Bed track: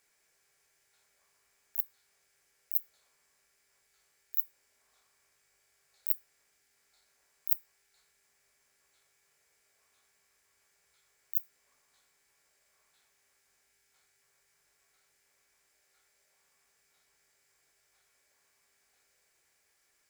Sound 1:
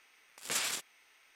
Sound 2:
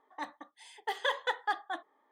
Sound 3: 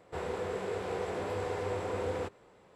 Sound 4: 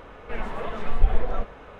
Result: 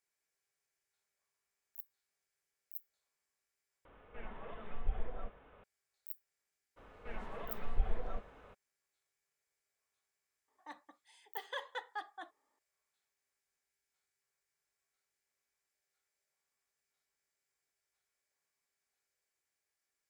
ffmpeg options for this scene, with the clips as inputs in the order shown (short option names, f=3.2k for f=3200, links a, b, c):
-filter_complex "[4:a]asplit=2[a][b];[0:a]volume=-16dB[c];[a]aresample=8000,aresample=44100[d];[c]asplit=2[e][f];[e]atrim=end=3.854[g];[d]atrim=end=1.79,asetpts=PTS-STARTPTS,volume=-16.5dB[h];[f]atrim=start=5.636[i];[b]atrim=end=1.79,asetpts=PTS-STARTPTS,volume=-13.5dB,afade=t=in:d=0.02,afade=t=out:st=1.77:d=0.02,adelay=6760[j];[2:a]atrim=end=2.11,asetpts=PTS-STARTPTS,volume=-11dB,afade=t=in:d=0.004:c=hsin,afade=t=out:st=2.106:d=0.004:c=hsin,adelay=10480[k];[g][h]acrossfade=d=0.004:c1=hsin:c2=hsin[l];[l][i]acrossfade=d=0.004:c1=hsin:c2=hsin[m];[m][j][k]amix=inputs=3:normalize=0"